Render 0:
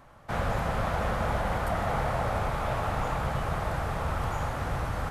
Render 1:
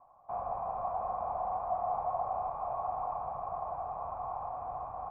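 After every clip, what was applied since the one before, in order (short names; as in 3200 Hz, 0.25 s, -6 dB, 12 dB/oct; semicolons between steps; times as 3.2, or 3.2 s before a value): vocal tract filter a; high shelf 3500 Hz -9 dB; gain +5 dB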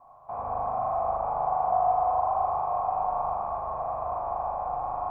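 in parallel at -2.5 dB: compressor, threshold -42 dBFS, peak gain reduction 13 dB; on the sum: spring tank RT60 2.3 s, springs 39 ms, chirp 30 ms, DRR -4 dB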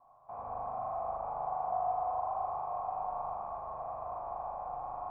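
bell 65 Hz -7 dB 0.42 oct; gain -9 dB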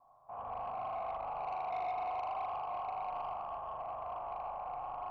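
dynamic EQ 1700 Hz, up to +6 dB, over -51 dBFS, Q 0.83; soft clip -30 dBFS, distortion -15 dB; gain -2.5 dB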